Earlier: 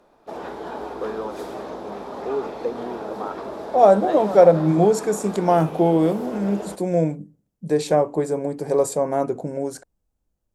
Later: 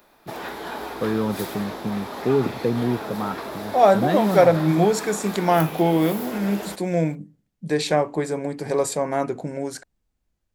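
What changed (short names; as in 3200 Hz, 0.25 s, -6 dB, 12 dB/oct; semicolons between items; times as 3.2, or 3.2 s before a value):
first voice: remove HPF 590 Hz 12 dB/oct; background: remove air absorption 76 m; master: add ten-band EQ 500 Hz -4 dB, 2000 Hz +8 dB, 4000 Hz +6 dB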